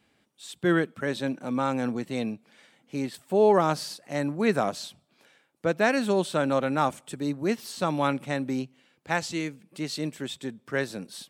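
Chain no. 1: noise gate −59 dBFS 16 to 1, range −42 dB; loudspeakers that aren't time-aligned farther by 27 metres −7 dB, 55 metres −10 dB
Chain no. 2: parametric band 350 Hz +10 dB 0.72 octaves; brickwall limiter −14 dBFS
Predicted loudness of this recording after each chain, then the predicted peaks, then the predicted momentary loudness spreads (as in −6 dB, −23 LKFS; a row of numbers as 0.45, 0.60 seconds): −26.5, −26.0 LKFS; −7.0, −14.0 dBFS; 12, 9 LU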